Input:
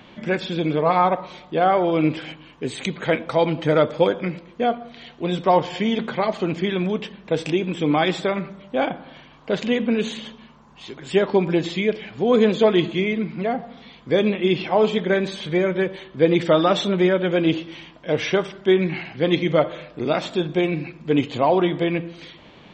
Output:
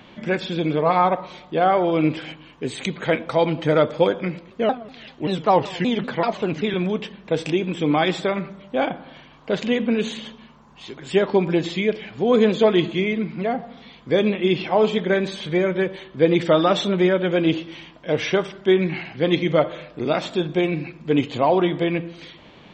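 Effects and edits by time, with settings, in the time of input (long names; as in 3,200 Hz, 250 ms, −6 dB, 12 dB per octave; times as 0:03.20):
0:04.50–0:06.74: pitch modulation by a square or saw wave saw down 5.2 Hz, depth 250 cents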